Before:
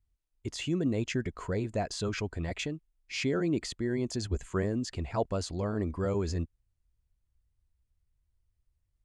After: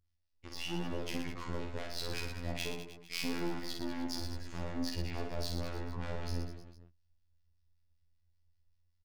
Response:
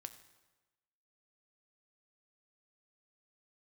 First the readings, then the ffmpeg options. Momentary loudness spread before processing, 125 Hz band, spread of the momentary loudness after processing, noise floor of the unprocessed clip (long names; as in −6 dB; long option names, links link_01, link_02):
7 LU, −8.0 dB, 5 LU, −79 dBFS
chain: -filter_complex "[0:a]highshelf=frequency=6400:width_type=q:width=3:gain=-7,aeval=exprs='(tanh(89.1*val(0)+0.65)-tanh(0.65))/89.1':channel_layout=same,acrossover=split=1100[link_01][link_02];[link_01]aeval=exprs='val(0)*(1-0.7/2+0.7/2*cos(2*PI*5.2*n/s))':channel_layout=same[link_03];[link_02]aeval=exprs='val(0)*(1-0.7/2-0.7/2*cos(2*PI*5.2*n/s))':channel_layout=same[link_04];[link_03][link_04]amix=inputs=2:normalize=0,afftfilt=real='hypot(re,im)*cos(PI*b)':imag='0':win_size=2048:overlap=0.75,asplit=2[link_05][link_06];[link_06]aecho=0:1:50|115|199.5|309.4|452.2:0.631|0.398|0.251|0.158|0.1[link_07];[link_05][link_07]amix=inputs=2:normalize=0,volume=7dB"